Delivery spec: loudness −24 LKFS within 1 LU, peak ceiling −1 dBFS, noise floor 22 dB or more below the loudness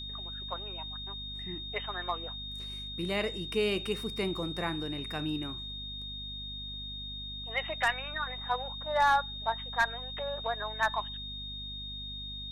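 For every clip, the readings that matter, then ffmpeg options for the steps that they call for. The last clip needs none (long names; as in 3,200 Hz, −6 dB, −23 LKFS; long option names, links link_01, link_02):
mains hum 50 Hz; hum harmonics up to 250 Hz; level of the hum −43 dBFS; interfering tone 3,700 Hz; level of the tone −39 dBFS; integrated loudness −33.5 LKFS; sample peak −17.0 dBFS; target loudness −24.0 LKFS
→ -af "bandreject=frequency=50:width_type=h:width=6,bandreject=frequency=100:width_type=h:width=6,bandreject=frequency=150:width_type=h:width=6,bandreject=frequency=200:width_type=h:width=6,bandreject=frequency=250:width_type=h:width=6"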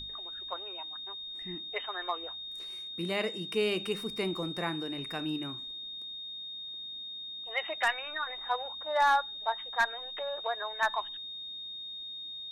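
mains hum none found; interfering tone 3,700 Hz; level of the tone −39 dBFS
→ -af "bandreject=frequency=3700:width=30"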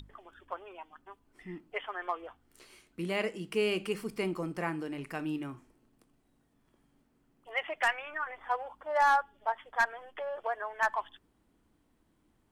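interfering tone none found; integrated loudness −33.5 LKFS; sample peak −18.0 dBFS; target loudness −24.0 LKFS
→ -af "volume=9.5dB"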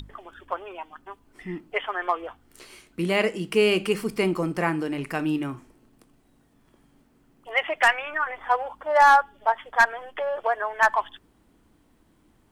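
integrated loudness −24.0 LKFS; sample peak −8.5 dBFS; background noise floor −62 dBFS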